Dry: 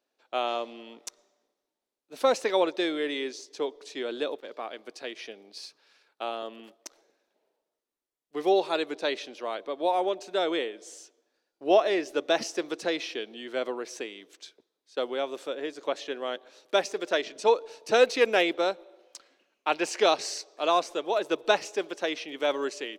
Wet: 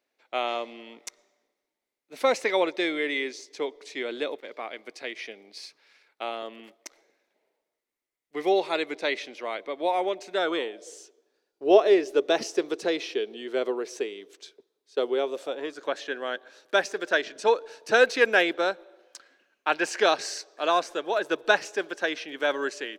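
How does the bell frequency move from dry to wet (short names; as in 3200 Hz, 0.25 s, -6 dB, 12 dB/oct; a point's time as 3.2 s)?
bell +11 dB 0.33 oct
10.32 s 2100 Hz
10.95 s 410 Hz
15.26 s 410 Hz
15.82 s 1600 Hz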